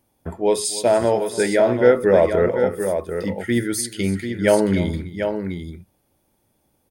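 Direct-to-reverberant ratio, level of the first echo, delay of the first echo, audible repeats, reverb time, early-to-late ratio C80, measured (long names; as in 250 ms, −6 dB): no reverb audible, −16.5 dB, 291 ms, 2, no reverb audible, no reverb audible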